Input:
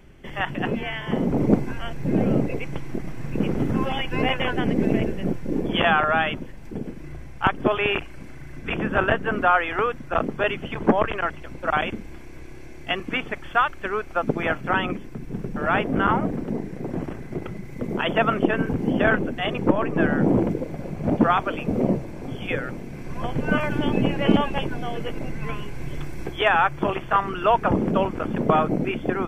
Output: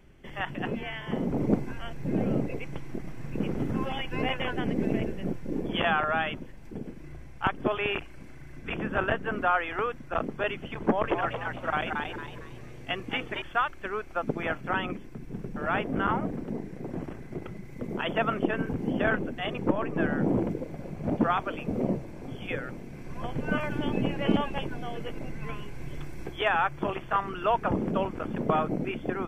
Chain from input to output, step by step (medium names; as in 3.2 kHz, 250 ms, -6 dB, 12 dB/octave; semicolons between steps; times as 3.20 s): 10.80–13.42 s: frequency-shifting echo 227 ms, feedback 35%, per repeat +120 Hz, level -4 dB; trim -6.5 dB